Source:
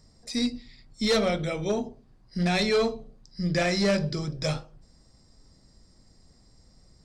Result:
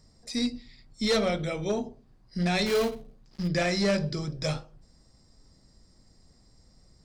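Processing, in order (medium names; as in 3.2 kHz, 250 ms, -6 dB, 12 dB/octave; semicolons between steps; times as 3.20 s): 2.66–3.48 s: dead-time distortion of 0.16 ms; trim -1.5 dB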